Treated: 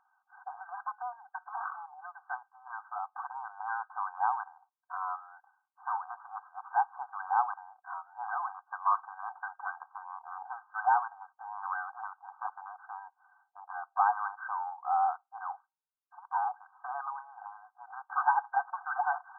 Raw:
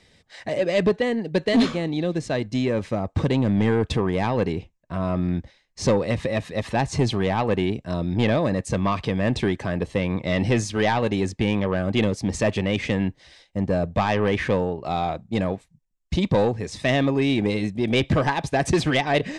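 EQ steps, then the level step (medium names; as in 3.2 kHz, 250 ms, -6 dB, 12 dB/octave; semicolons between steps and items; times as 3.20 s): brick-wall FIR band-pass 720–1600 Hz; 0.0 dB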